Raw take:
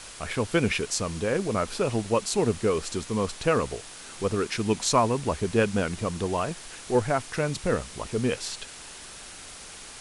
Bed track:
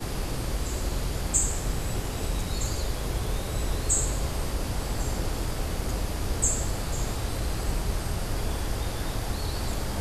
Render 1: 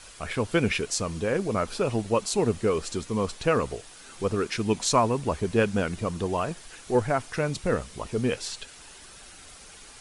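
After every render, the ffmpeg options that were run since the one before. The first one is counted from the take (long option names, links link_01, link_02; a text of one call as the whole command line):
ffmpeg -i in.wav -af "afftdn=noise_reduction=7:noise_floor=-44" out.wav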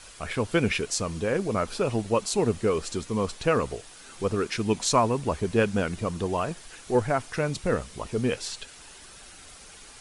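ffmpeg -i in.wav -af anull out.wav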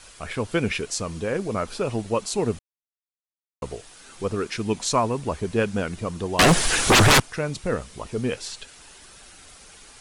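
ffmpeg -i in.wav -filter_complex "[0:a]asettb=1/sr,asplit=3[link_01][link_02][link_03];[link_01]atrim=end=6.394[link_04];[link_02]atrim=start=6.39:end=7.2,asetpts=PTS-STARTPTS,afade=type=in:duration=0.004:curve=qsin,afade=type=out:start_time=0.806:duration=0.004:curve=qsin,aeval=exprs='0.282*sin(PI/2*10*val(0)/0.282)':channel_layout=same[link_05];[link_03]atrim=start=7.196[link_06];[link_04][link_05]acrossfade=duration=0.004:curve1=hsin:curve2=qsin[link_07];[link_07][link_06]acrossfade=duration=0.004:curve1=qsin:curve2=hsin,asplit=3[link_08][link_09][link_10];[link_08]atrim=end=2.59,asetpts=PTS-STARTPTS,afade=type=out:start_time=2.586:duration=0.004:curve=hsin[link_11];[link_09]atrim=start=2.59:end=3.62,asetpts=PTS-STARTPTS,volume=0[link_12];[link_10]atrim=start=3.62,asetpts=PTS-STARTPTS,afade=type=in:duration=0.004:curve=hsin[link_13];[link_11][link_12][link_13]concat=n=3:v=0:a=1" out.wav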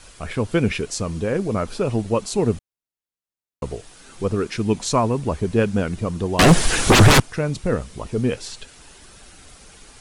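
ffmpeg -i in.wav -af "lowshelf=frequency=450:gain=7" out.wav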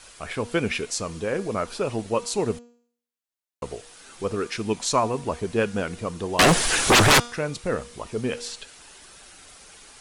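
ffmpeg -i in.wav -af "lowshelf=frequency=290:gain=-11.5,bandreject=frequency=238.6:width_type=h:width=4,bandreject=frequency=477.2:width_type=h:width=4,bandreject=frequency=715.8:width_type=h:width=4,bandreject=frequency=954.4:width_type=h:width=4,bandreject=frequency=1193:width_type=h:width=4,bandreject=frequency=1431.6:width_type=h:width=4,bandreject=frequency=1670.2:width_type=h:width=4,bandreject=frequency=1908.8:width_type=h:width=4,bandreject=frequency=2147.4:width_type=h:width=4,bandreject=frequency=2386:width_type=h:width=4,bandreject=frequency=2624.6:width_type=h:width=4,bandreject=frequency=2863.2:width_type=h:width=4,bandreject=frequency=3101.8:width_type=h:width=4,bandreject=frequency=3340.4:width_type=h:width=4,bandreject=frequency=3579:width_type=h:width=4,bandreject=frequency=3817.6:width_type=h:width=4,bandreject=frequency=4056.2:width_type=h:width=4,bandreject=frequency=4294.8:width_type=h:width=4,bandreject=frequency=4533.4:width_type=h:width=4,bandreject=frequency=4772:width_type=h:width=4,bandreject=frequency=5010.6:width_type=h:width=4,bandreject=frequency=5249.2:width_type=h:width=4,bandreject=frequency=5487.8:width_type=h:width=4,bandreject=frequency=5726.4:width_type=h:width=4,bandreject=frequency=5965:width_type=h:width=4,bandreject=frequency=6203.6:width_type=h:width=4,bandreject=frequency=6442.2:width_type=h:width=4,bandreject=frequency=6680.8:width_type=h:width=4,bandreject=frequency=6919.4:width_type=h:width=4,bandreject=frequency=7158:width_type=h:width=4,bandreject=frequency=7396.6:width_type=h:width=4,bandreject=frequency=7635.2:width_type=h:width=4" out.wav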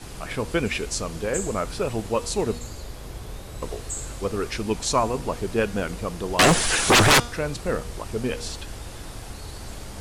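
ffmpeg -i in.wav -i bed.wav -filter_complex "[1:a]volume=-7.5dB[link_01];[0:a][link_01]amix=inputs=2:normalize=0" out.wav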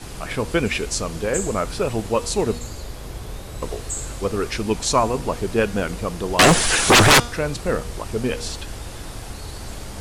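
ffmpeg -i in.wav -af "volume=3.5dB" out.wav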